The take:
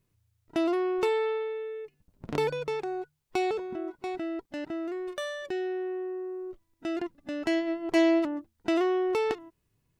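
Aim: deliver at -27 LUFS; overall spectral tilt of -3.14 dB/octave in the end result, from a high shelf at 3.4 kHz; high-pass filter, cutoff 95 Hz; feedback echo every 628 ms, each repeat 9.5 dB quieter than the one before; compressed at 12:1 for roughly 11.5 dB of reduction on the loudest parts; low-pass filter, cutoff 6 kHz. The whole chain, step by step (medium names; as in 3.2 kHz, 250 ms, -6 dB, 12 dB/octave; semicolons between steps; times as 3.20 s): high-pass 95 Hz; low-pass 6 kHz; treble shelf 3.4 kHz +6.5 dB; compression 12:1, threshold -29 dBFS; feedback delay 628 ms, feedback 33%, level -9.5 dB; trim +7.5 dB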